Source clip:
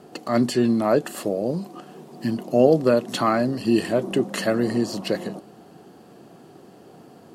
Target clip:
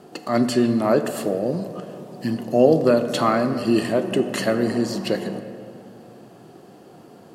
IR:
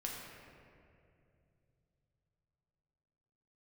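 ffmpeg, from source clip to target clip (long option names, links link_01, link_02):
-filter_complex "[0:a]asplit=2[link_01][link_02];[1:a]atrim=start_sample=2205,lowshelf=frequency=130:gain=-6[link_03];[link_02][link_03]afir=irnorm=-1:irlink=0,volume=-4dB[link_04];[link_01][link_04]amix=inputs=2:normalize=0,volume=-2dB"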